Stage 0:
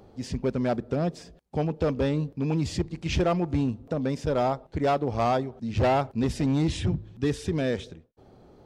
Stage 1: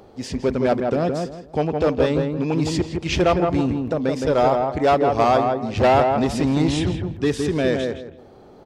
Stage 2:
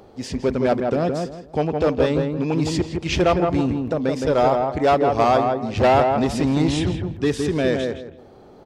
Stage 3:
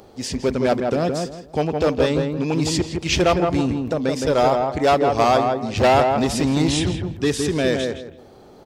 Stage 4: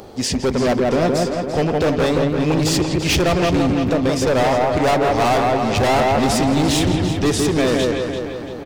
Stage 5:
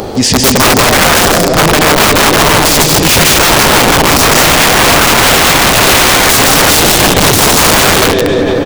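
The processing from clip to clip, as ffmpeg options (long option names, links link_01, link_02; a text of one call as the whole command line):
ffmpeg -i in.wav -filter_complex "[0:a]bass=frequency=250:gain=-7,treble=frequency=4000:gain=-1,asplit=2[link_01][link_02];[link_02]adelay=165,lowpass=frequency=1600:poles=1,volume=-3.5dB,asplit=2[link_03][link_04];[link_04]adelay=165,lowpass=frequency=1600:poles=1,volume=0.28,asplit=2[link_05][link_06];[link_06]adelay=165,lowpass=frequency=1600:poles=1,volume=0.28,asplit=2[link_07][link_08];[link_08]adelay=165,lowpass=frequency=1600:poles=1,volume=0.28[link_09];[link_03][link_05][link_07][link_09]amix=inputs=4:normalize=0[link_10];[link_01][link_10]amix=inputs=2:normalize=0,volume=7.5dB" out.wav
ffmpeg -i in.wav -af anull out.wav
ffmpeg -i in.wav -af "highshelf=frequency=3700:gain=9.5" out.wav
ffmpeg -i in.wav -filter_complex "[0:a]asplit=2[link_01][link_02];[link_02]acompressor=threshold=-27dB:ratio=6,volume=-2dB[link_03];[link_01][link_03]amix=inputs=2:normalize=0,asoftclip=type=hard:threshold=-17.5dB,asplit=2[link_04][link_05];[link_05]adelay=340,lowpass=frequency=4000:poles=1,volume=-7dB,asplit=2[link_06][link_07];[link_07]adelay=340,lowpass=frequency=4000:poles=1,volume=0.52,asplit=2[link_08][link_09];[link_09]adelay=340,lowpass=frequency=4000:poles=1,volume=0.52,asplit=2[link_10][link_11];[link_11]adelay=340,lowpass=frequency=4000:poles=1,volume=0.52,asplit=2[link_12][link_13];[link_13]adelay=340,lowpass=frequency=4000:poles=1,volume=0.52,asplit=2[link_14][link_15];[link_15]adelay=340,lowpass=frequency=4000:poles=1,volume=0.52[link_16];[link_04][link_06][link_08][link_10][link_12][link_14][link_16]amix=inputs=7:normalize=0,volume=3dB" out.wav
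ffmpeg -i in.wav -af "aecho=1:1:154.5|221.6:0.631|0.501,aeval=exprs='(mod(4.22*val(0)+1,2)-1)/4.22':channel_layout=same,alimiter=level_in=20dB:limit=-1dB:release=50:level=0:latency=1,volume=-1dB" out.wav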